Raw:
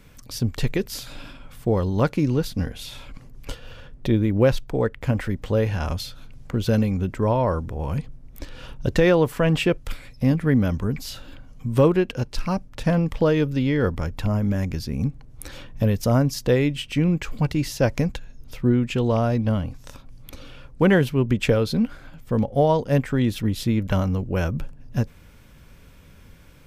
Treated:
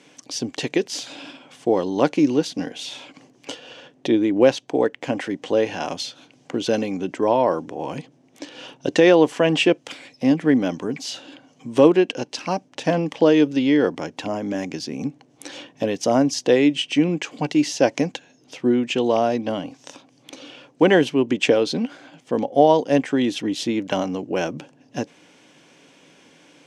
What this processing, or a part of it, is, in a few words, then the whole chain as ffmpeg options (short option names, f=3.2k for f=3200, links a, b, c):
television speaker: -af "highpass=f=200:w=0.5412,highpass=f=200:w=1.3066,equalizer=f=210:t=q:w=4:g=-8,equalizer=f=300:t=q:w=4:g=6,equalizer=f=750:t=q:w=4:g=5,equalizer=f=1.3k:t=q:w=4:g=-6,equalizer=f=3k:t=q:w=4:g=5,equalizer=f=6.1k:t=q:w=4:g=5,lowpass=f=8.7k:w=0.5412,lowpass=f=8.7k:w=1.3066,volume=3dB"